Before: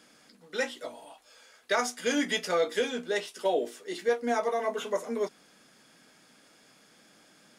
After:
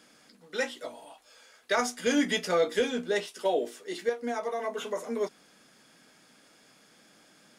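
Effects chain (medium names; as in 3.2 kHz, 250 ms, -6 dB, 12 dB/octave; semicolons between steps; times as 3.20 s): 1.77–3.26 s: bass shelf 250 Hz +7.5 dB; 4.09–4.97 s: compression, threshold -28 dBFS, peak gain reduction 6.5 dB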